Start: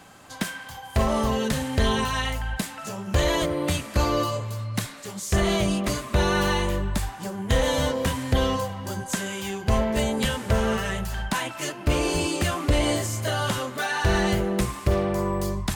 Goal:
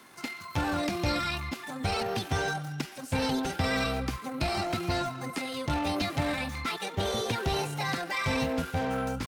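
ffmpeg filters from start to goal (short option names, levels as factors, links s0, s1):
-filter_complex "[0:a]lowshelf=f=99:g=-8,asetrate=58866,aresample=44100,atempo=0.749154,acrossover=split=370|1800[s0][s1][s2];[s1]asoftclip=type=hard:threshold=0.0355[s3];[s0][s3][s2]amix=inputs=3:normalize=0,acrossover=split=6800[s4][s5];[s5]acompressor=threshold=0.00398:ratio=4:attack=1:release=60[s6];[s4][s6]amix=inputs=2:normalize=0,atempo=1.7,volume=0.75"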